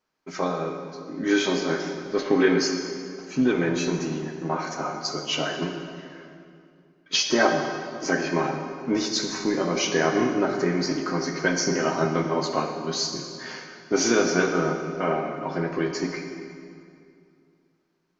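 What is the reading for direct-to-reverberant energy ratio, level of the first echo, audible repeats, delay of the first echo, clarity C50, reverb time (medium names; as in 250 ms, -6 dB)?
3.0 dB, no echo, no echo, no echo, 5.0 dB, 2.4 s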